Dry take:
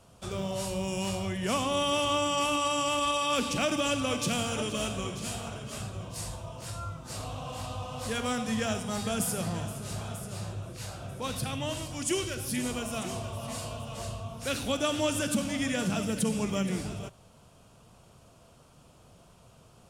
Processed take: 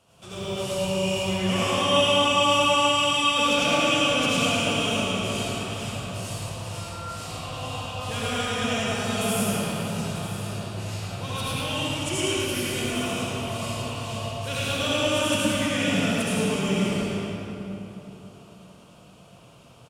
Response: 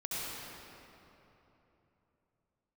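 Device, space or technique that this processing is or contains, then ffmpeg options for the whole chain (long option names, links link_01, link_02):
PA in a hall: -filter_complex "[0:a]highpass=frequency=120:poles=1,equalizer=frequency=2900:width_type=o:width=0.59:gain=6.5,aecho=1:1:107:0.596[link_01];[1:a]atrim=start_sample=2205[link_02];[link_01][link_02]afir=irnorm=-1:irlink=0"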